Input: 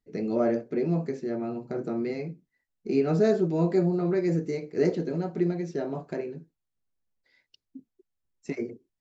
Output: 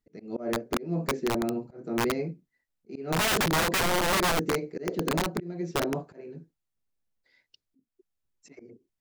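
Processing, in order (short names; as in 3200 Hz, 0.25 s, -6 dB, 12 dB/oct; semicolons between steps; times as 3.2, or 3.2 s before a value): auto swell 0.311 s; dynamic EQ 340 Hz, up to +4 dB, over -36 dBFS, Q 0.82; wrapped overs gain 20 dB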